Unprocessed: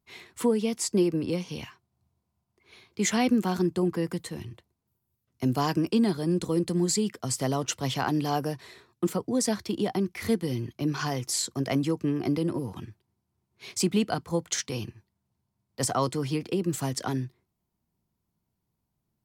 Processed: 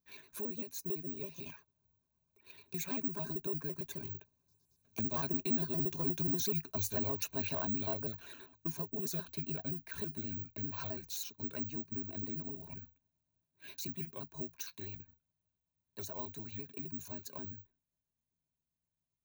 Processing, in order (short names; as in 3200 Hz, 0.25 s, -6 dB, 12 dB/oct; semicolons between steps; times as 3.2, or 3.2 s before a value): trilling pitch shifter -4 st, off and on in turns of 61 ms; Doppler pass-by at 6.27, 29 m/s, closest 27 m; ripple EQ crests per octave 1.5, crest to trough 12 dB; compressor 2:1, threshold -54 dBFS, peak gain reduction 19.5 dB; soft clip -35 dBFS, distortion -20 dB; careless resampling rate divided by 2×, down none, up zero stuff; gain +6.5 dB